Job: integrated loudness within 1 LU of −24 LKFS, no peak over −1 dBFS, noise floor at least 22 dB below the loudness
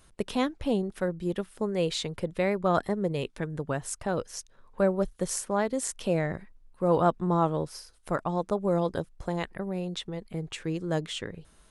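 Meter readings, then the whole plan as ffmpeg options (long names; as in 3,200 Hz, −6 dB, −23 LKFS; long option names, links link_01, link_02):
integrated loudness −30.0 LKFS; sample peak −11.0 dBFS; target loudness −24.0 LKFS
→ -af "volume=6dB"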